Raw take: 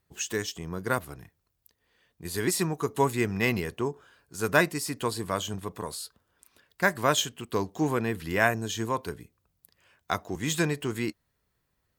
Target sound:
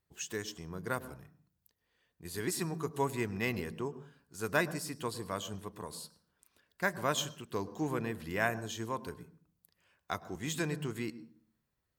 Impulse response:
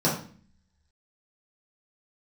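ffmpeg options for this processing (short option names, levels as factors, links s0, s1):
-filter_complex "[0:a]asplit=2[s0][s1];[1:a]atrim=start_sample=2205,adelay=101[s2];[s1][s2]afir=irnorm=-1:irlink=0,volume=0.0282[s3];[s0][s3]amix=inputs=2:normalize=0,volume=0.398"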